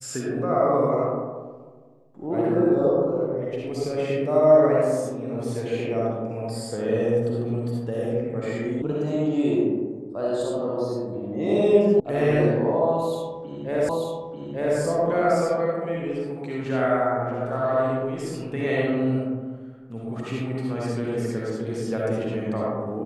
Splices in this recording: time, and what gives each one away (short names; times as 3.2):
8.82 sound cut off
12 sound cut off
13.89 repeat of the last 0.89 s